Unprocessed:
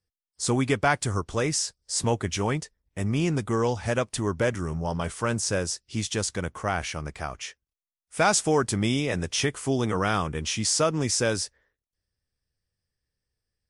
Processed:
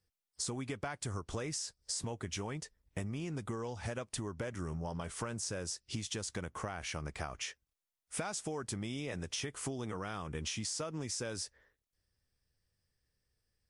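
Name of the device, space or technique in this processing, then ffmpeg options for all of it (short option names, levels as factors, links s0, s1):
serial compression, leveller first: -af "acompressor=threshold=0.0398:ratio=2.5,acompressor=threshold=0.0126:ratio=6,volume=1.19"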